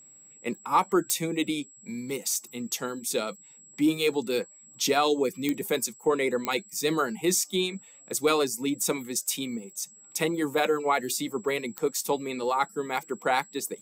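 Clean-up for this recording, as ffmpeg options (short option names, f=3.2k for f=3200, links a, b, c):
-af "adeclick=t=4,bandreject=f=7.7k:w=30"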